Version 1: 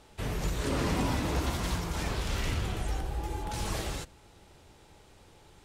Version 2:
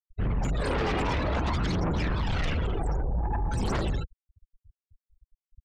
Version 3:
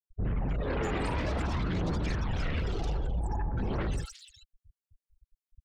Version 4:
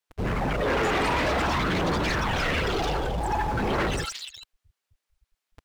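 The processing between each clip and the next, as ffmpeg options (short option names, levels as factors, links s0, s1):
-af "afftfilt=real='re*gte(hypot(re,im),0.0178)':imag='im*gte(hypot(re,im),0.0178)':win_size=1024:overlap=0.75,aphaser=in_gain=1:out_gain=1:delay=2.6:decay=0.57:speed=0.53:type=triangular,aeval=exprs='0.178*sin(PI/2*3.55*val(0)/0.178)':c=same,volume=0.376"
-filter_complex "[0:a]acrossover=split=970|3500[s0][s1][s2];[s1]adelay=60[s3];[s2]adelay=400[s4];[s0][s3][s4]amix=inputs=3:normalize=0,volume=0.708"
-filter_complex "[0:a]asplit=2[s0][s1];[s1]acrusher=bits=7:mix=0:aa=0.000001,volume=0.562[s2];[s0][s2]amix=inputs=2:normalize=0,asplit=2[s3][s4];[s4]highpass=f=720:p=1,volume=12.6,asoftclip=type=tanh:threshold=0.133[s5];[s3][s5]amix=inputs=2:normalize=0,lowpass=f=3500:p=1,volume=0.501"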